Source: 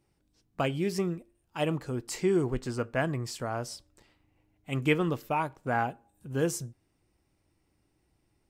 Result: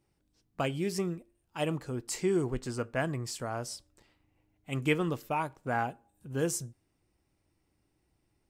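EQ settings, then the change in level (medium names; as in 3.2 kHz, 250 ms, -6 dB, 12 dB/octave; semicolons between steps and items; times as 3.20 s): dynamic bell 8.8 kHz, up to +5 dB, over -55 dBFS, Q 0.77; -2.5 dB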